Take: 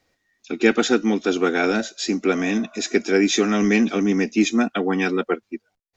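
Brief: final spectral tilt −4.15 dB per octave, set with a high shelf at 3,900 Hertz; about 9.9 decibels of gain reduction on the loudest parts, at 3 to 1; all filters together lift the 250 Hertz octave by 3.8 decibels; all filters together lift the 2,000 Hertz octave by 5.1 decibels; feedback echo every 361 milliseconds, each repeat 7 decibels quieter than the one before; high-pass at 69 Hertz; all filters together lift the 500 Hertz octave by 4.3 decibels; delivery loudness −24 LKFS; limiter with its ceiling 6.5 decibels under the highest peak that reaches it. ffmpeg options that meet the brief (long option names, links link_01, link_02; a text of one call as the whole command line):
ffmpeg -i in.wav -af "highpass=69,equalizer=frequency=250:width_type=o:gain=3.5,equalizer=frequency=500:width_type=o:gain=4,equalizer=frequency=2000:width_type=o:gain=8,highshelf=frequency=3900:gain=-7,acompressor=threshold=-21dB:ratio=3,alimiter=limit=-14.5dB:level=0:latency=1,aecho=1:1:361|722|1083|1444|1805:0.447|0.201|0.0905|0.0407|0.0183,volume=0.5dB" out.wav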